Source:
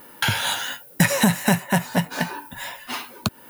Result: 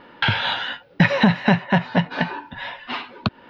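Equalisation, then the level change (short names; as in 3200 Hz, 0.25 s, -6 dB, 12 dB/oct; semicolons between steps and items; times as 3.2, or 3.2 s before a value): inverse Chebyshev low-pass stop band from 7300 Hz, stop band 40 dB; +2.5 dB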